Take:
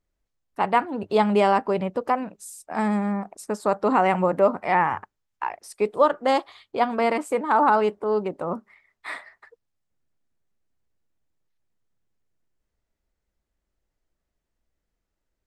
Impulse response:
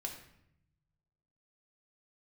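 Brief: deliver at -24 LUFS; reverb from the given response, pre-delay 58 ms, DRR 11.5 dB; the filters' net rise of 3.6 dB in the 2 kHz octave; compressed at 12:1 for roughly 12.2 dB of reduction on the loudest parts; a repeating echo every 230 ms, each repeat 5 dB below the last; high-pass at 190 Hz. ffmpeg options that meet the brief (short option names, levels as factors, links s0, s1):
-filter_complex "[0:a]highpass=190,equalizer=f=2000:t=o:g=4.5,acompressor=threshold=0.0562:ratio=12,aecho=1:1:230|460|690|920|1150|1380|1610:0.562|0.315|0.176|0.0988|0.0553|0.031|0.0173,asplit=2[s0][s1];[1:a]atrim=start_sample=2205,adelay=58[s2];[s1][s2]afir=irnorm=-1:irlink=0,volume=0.299[s3];[s0][s3]amix=inputs=2:normalize=0,volume=2"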